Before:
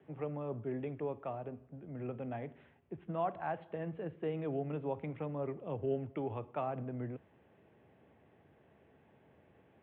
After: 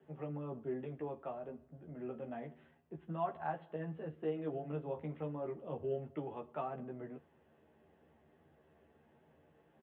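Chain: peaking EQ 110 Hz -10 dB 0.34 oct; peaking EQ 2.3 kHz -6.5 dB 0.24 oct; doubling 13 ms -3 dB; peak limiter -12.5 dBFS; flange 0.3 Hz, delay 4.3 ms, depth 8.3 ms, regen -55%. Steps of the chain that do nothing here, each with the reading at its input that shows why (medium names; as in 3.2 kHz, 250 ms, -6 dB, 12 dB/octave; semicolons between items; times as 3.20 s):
peak limiter -12.5 dBFS: peak at its input -21.5 dBFS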